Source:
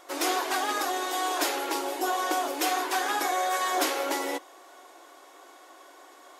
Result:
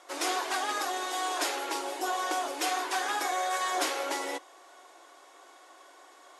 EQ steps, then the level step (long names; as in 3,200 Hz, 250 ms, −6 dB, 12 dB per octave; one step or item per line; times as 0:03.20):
high-pass filter 230 Hz
low-pass filter 11,000 Hz 24 dB per octave
low-shelf EQ 410 Hz −5 dB
−2.0 dB